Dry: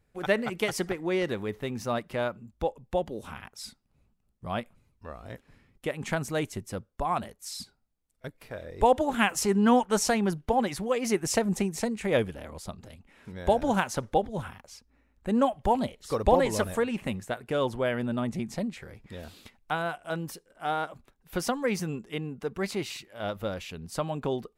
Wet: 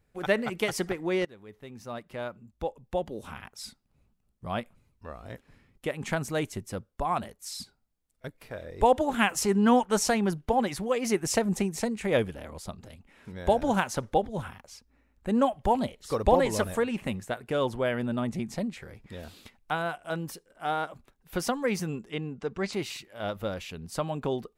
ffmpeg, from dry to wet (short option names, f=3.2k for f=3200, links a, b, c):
-filter_complex "[0:a]asettb=1/sr,asplit=3[a][b][c];[a]atrim=end=22.104[d];[b]atrim=start=22.1:end=22.73,asetpts=PTS-STARTPTS,afade=t=in:d=0.004:c=qsin,afade=t=out:st=0.626:d=0.004:c=qsin,lowpass=f=7.7k:w=0.5412,lowpass=f=7.7k:w=1.3066[e];[c]atrim=start=22.726[f];[d][e]acrossfade=d=0.004:c1=hsin:c2=qsin[g];[g][f]acrossfade=d=0.004:c1=qsin:c2=hsin,asplit=2[h][i];[h]atrim=end=1.25,asetpts=PTS-STARTPTS,afade=t=out:st=1.246:d=0.004:c=hsin:silence=0.0841395[j];[i]atrim=start=1.25,asetpts=PTS-STARTPTS,afade=t=in:d=2.15:silence=0.0841395[k];[j][k]concat=n=2:v=0:a=1"